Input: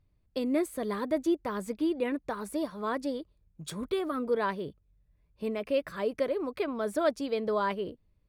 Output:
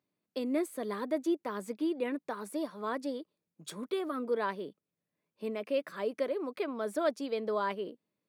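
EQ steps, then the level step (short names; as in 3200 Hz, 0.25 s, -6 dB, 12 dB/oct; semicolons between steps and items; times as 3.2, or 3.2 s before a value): HPF 200 Hz 24 dB/oct; -3.0 dB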